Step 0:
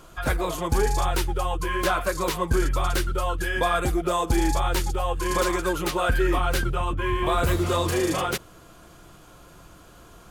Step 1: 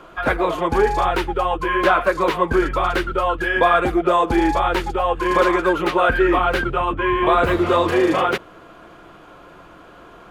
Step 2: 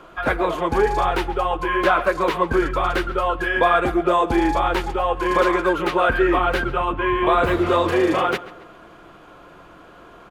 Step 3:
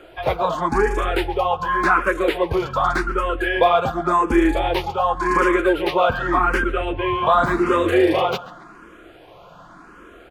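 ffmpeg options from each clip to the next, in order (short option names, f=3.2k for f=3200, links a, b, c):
-filter_complex "[0:a]acrossover=split=220 3200:gain=0.251 1 0.1[a][b][c];[a][b][c]amix=inputs=3:normalize=0,volume=8.5dB"
-filter_complex "[0:a]asplit=2[a][b];[b]adelay=135,lowpass=f=4.9k:p=1,volume=-17dB,asplit=2[c][d];[d]adelay=135,lowpass=f=4.9k:p=1,volume=0.42,asplit=2[e][f];[f]adelay=135,lowpass=f=4.9k:p=1,volume=0.42,asplit=2[g][h];[h]adelay=135,lowpass=f=4.9k:p=1,volume=0.42[i];[a][c][e][g][i]amix=inputs=5:normalize=0,volume=-1.5dB"
-filter_complex "[0:a]asplit=2[a][b];[b]afreqshift=0.88[c];[a][c]amix=inputs=2:normalize=1,volume=3.5dB"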